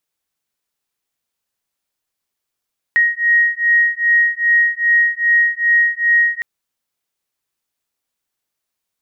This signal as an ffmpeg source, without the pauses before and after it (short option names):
-f lavfi -i "aevalsrc='0.188*(sin(2*PI*1880*t)+sin(2*PI*1882.5*t))':d=3.46:s=44100"